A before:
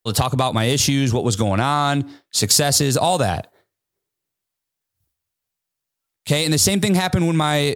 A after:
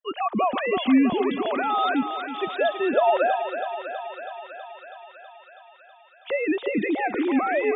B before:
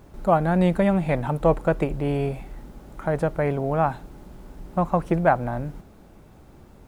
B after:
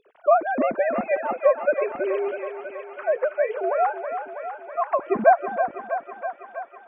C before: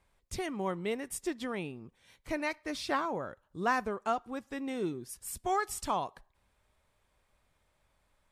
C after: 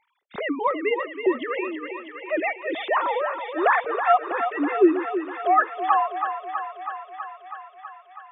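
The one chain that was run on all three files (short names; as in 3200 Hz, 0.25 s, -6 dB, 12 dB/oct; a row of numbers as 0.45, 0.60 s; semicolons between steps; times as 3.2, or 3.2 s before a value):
sine-wave speech; notch 450 Hz, Q 12; thinning echo 0.324 s, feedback 78%, high-pass 400 Hz, level -7.5 dB; match loudness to -24 LUFS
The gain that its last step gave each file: -4.5, -0.5, +11.5 dB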